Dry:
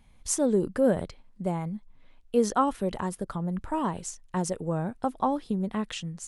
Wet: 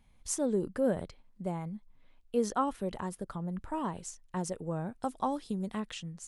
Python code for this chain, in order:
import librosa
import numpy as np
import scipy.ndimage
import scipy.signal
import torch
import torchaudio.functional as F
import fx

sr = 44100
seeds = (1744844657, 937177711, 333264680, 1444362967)

y = fx.peak_eq(x, sr, hz=7600.0, db=10.5, octaves=1.9, at=(5.01, 5.8))
y = y * librosa.db_to_amplitude(-6.0)